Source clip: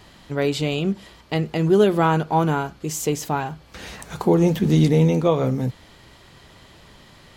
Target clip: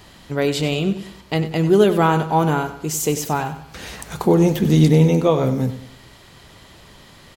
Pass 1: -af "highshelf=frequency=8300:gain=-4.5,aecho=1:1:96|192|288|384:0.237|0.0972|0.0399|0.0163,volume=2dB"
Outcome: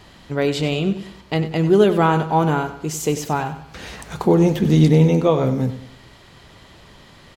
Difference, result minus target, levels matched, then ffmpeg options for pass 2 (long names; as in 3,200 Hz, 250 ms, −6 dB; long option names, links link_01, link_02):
8,000 Hz band −4.0 dB
-af "highshelf=frequency=8300:gain=6,aecho=1:1:96|192|288|384:0.237|0.0972|0.0399|0.0163,volume=2dB"